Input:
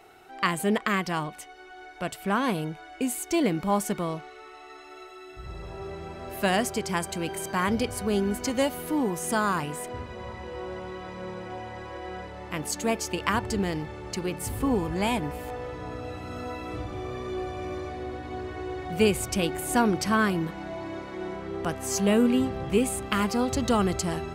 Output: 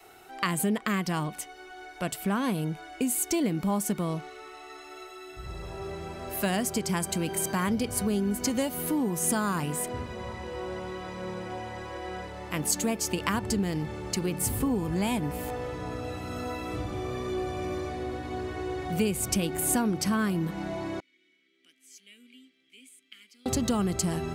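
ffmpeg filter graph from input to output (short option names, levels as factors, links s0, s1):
-filter_complex "[0:a]asettb=1/sr,asplit=3[s0][s1][s2];[s0]atrim=end=21.004[s3];[s1]atrim=start=21:end=23.46,asetpts=PTS-STARTPTS,afade=t=in:d=0.004:c=qsin,afade=t=out:st=2.456:d=0.004:c=qsin,asplit=3[s4][s5][s6];[s4]bandpass=f=270:t=q:w=8,volume=1[s7];[s5]bandpass=f=2290:t=q:w=8,volume=0.501[s8];[s6]bandpass=f=3010:t=q:w=8,volume=0.355[s9];[s7][s8][s9]amix=inputs=3:normalize=0,aderivative[s10];[s2]atrim=start=23.456[s11];[s3][s10]acrossfade=d=0.004:c1=hsin:c2=qsin[s12];[s12][s11]acrossfade=d=0.004:c1=qsin:c2=hsin,adynamicequalizer=threshold=0.0112:dfrequency=190:dqfactor=0.88:tfrequency=190:tqfactor=0.88:attack=5:release=100:ratio=0.375:range=3.5:mode=boostabove:tftype=bell,acompressor=threshold=0.0501:ratio=3,highshelf=f=6000:g=9.5"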